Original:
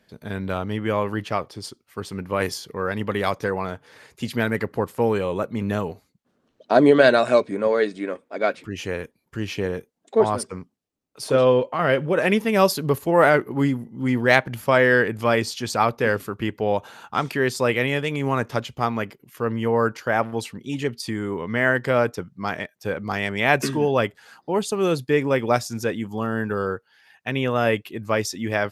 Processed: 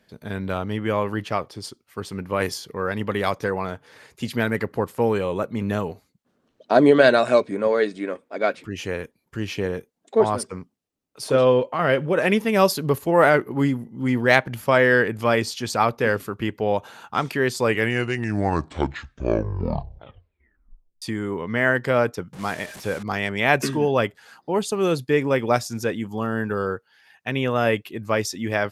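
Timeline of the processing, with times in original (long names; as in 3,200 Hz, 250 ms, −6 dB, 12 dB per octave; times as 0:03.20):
0:17.48: tape stop 3.54 s
0:22.33–0:23.03: linear delta modulator 64 kbit/s, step −33.5 dBFS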